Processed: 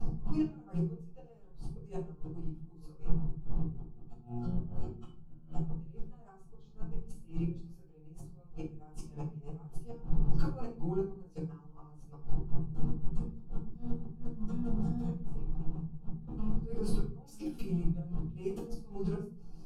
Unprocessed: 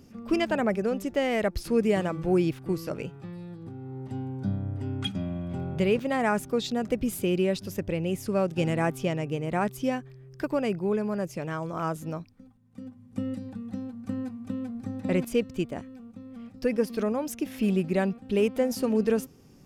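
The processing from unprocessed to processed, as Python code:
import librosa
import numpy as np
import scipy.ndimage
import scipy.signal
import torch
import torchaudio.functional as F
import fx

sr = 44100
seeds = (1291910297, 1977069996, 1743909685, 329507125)

y = fx.pitch_bins(x, sr, semitones=-1.5)
y = fx.dmg_wind(y, sr, seeds[0], corner_hz=130.0, level_db=-25.0)
y = fx.high_shelf(y, sr, hz=9400.0, db=-6.0)
y = fx.level_steps(y, sr, step_db=20)
y = fx.gate_flip(y, sr, shuts_db=-32.0, range_db=-27)
y = fx.fixed_phaser(y, sr, hz=390.0, stages=8)
y = fx.doubler(y, sr, ms=13.0, db=-5)
y = fx.room_shoebox(y, sr, seeds[1], volume_m3=220.0, walls='furnished', distance_m=6.5)
y = y * librosa.db_to_amplitude(-4.0)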